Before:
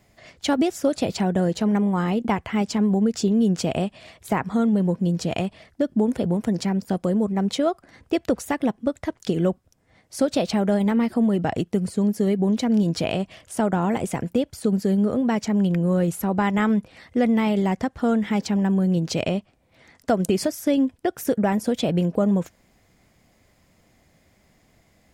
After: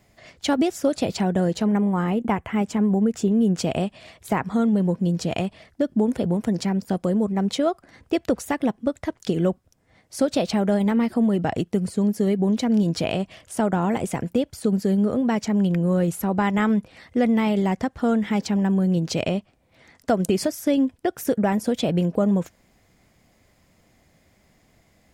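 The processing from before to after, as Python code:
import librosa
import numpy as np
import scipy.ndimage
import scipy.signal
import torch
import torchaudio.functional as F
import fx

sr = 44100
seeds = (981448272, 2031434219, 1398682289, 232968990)

y = fx.peak_eq(x, sr, hz=4600.0, db=-11.0, octaves=0.86, at=(1.66, 3.57))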